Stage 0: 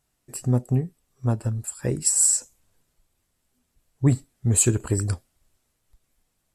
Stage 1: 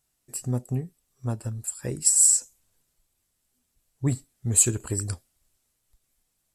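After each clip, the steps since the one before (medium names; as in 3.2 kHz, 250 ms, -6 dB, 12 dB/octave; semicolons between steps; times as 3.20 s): treble shelf 3.5 kHz +8.5 dB; trim -6 dB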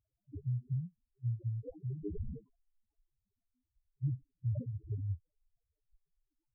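compression, threshold -25 dBFS, peak gain reduction 11.5 dB; sample-and-hold 22×; loudest bins only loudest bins 2; trim -2.5 dB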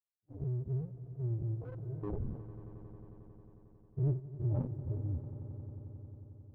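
every event in the spectrogram widened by 120 ms; power-law waveshaper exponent 2; echo with a slow build-up 90 ms, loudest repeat 5, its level -17 dB; trim +3 dB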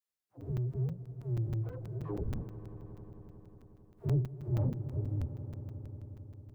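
phase dispersion lows, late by 83 ms, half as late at 600 Hz; crackling interface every 0.16 s, samples 256, zero, from 0.41 s; trim +2 dB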